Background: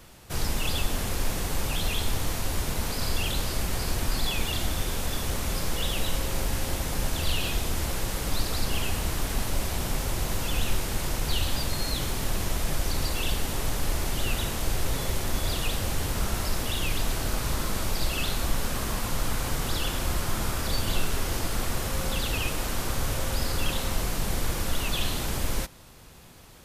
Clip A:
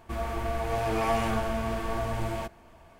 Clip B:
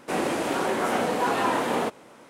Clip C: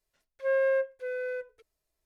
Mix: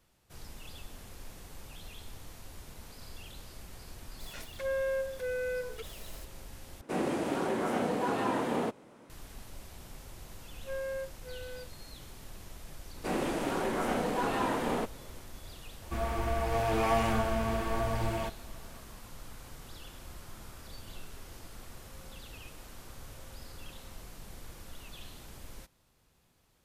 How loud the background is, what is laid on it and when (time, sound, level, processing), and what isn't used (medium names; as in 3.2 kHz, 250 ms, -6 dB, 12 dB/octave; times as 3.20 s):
background -19.5 dB
4.20 s: add C -6.5 dB + level flattener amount 70%
6.81 s: replace with B -10 dB + bass shelf 440 Hz +9.5 dB
10.23 s: add C -11.5 dB
12.96 s: add B -8 dB + bass shelf 210 Hz +9.5 dB
15.82 s: add A -1 dB